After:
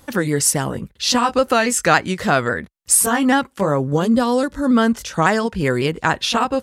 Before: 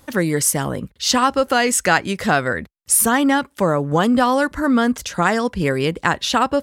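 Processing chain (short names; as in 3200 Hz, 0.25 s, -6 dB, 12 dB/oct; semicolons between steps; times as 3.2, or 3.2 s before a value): repeated pitch sweeps -1.5 st, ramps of 0.277 s; spectral gain 3.84–4.76, 610–3200 Hz -6 dB; gain +1.5 dB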